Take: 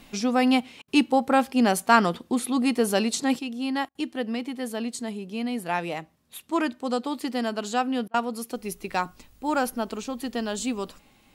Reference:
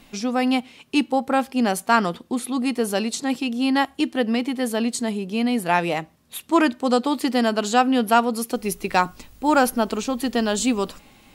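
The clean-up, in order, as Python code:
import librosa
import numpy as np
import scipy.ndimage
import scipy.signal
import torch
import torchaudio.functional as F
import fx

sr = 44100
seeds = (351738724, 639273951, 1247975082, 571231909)

y = fx.fix_interpolate(x, sr, at_s=(0.82, 3.89, 8.08), length_ms=59.0)
y = fx.gain(y, sr, db=fx.steps((0.0, 0.0), (3.39, 7.5)))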